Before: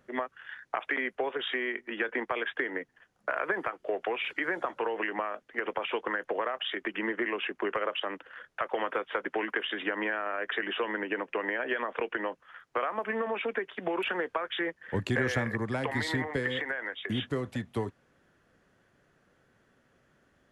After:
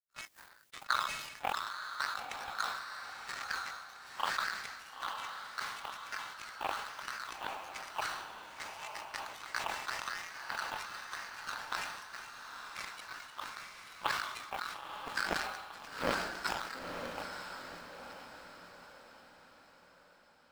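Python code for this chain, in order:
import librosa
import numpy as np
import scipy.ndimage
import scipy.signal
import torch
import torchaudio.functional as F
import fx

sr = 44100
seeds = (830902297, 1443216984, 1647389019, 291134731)

p1 = fx.octave_mirror(x, sr, pivot_hz=1400.0)
p2 = scipy.signal.sosfilt(scipy.signal.butter(2, 3700.0, 'lowpass', fs=sr, output='sos'), p1)
p3 = fx.high_shelf(p2, sr, hz=2500.0, db=-5.5)
p4 = fx.formant_shift(p3, sr, semitones=5)
p5 = fx.quant_dither(p4, sr, seeds[0], bits=8, dither='triangular')
p6 = p4 + F.gain(torch.from_numpy(p5), -8.0).numpy()
p7 = fx.power_curve(p6, sr, exponent=3.0)
p8 = p7 + fx.echo_diffused(p7, sr, ms=947, feedback_pct=45, wet_db=-4, dry=0)
p9 = fx.sustainer(p8, sr, db_per_s=49.0)
y = F.gain(torch.from_numpy(p9), 7.5).numpy()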